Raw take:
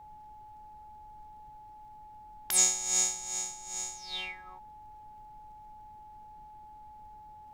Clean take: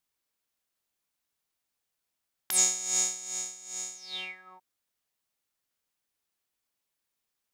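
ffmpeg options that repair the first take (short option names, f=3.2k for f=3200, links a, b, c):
-af "adeclick=t=4,bandreject=f=850:w=30,afftdn=nr=30:nf=-51"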